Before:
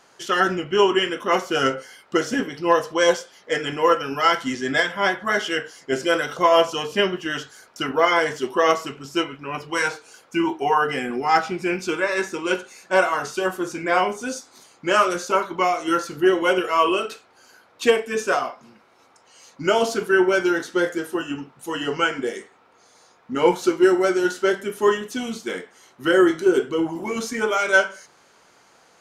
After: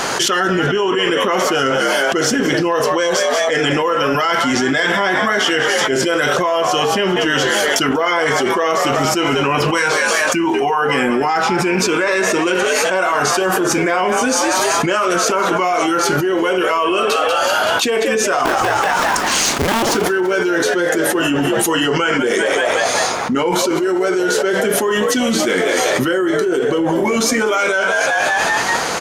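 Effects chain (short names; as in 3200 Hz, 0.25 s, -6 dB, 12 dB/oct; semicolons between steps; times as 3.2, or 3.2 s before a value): 18.45–19.95 cycle switcher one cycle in 2, inverted; frequency-shifting echo 0.19 s, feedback 52%, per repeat +69 Hz, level -15 dB; fast leveller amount 100%; gain -5 dB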